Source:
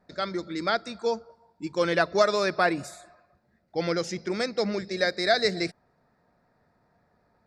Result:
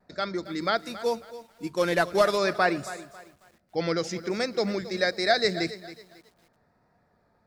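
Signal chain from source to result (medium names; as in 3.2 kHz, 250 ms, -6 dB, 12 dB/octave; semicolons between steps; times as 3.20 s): 0.79–2.38 s: CVSD coder 64 kbps; vibrato 1.2 Hz 33 cents; bit-crushed delay 273 ms, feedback 35%, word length 8-bit, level -15 dB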